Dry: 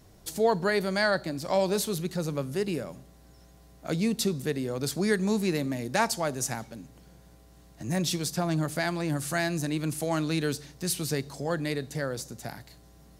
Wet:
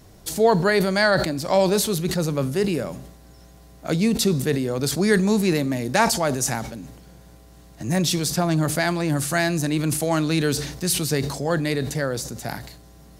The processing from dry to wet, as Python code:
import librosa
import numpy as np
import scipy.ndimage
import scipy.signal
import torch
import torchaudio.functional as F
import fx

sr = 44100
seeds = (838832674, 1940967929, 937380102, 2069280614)

y = fx.sustainer(x, sr, db_per_s=62.0)
y = y * librosa.db_to_amplitude(6.5)